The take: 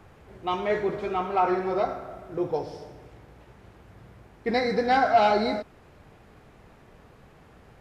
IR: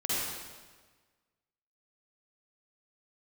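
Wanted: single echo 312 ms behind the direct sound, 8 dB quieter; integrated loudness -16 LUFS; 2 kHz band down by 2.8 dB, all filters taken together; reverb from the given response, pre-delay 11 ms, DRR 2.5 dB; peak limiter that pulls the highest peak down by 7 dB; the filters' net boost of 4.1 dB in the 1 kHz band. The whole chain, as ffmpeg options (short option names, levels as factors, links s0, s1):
-filter_complex "[0:a]equalizer=f=1000:t=o:g=7.5,equalizer=f=2000:t=o:g=-7,alimiter=limit=0.2:level=0:latency=1,aecho=1:1:312:0.398,asplit=2[s0][s1];[1:a]atrim=start_sample=2205,adelay=11[s2];[s1][s2]afir=irnorm=-1:irlink=0,volume=0.299[s3];[s0][s3]amix=inputs=2:normalize=0,volume=2.37"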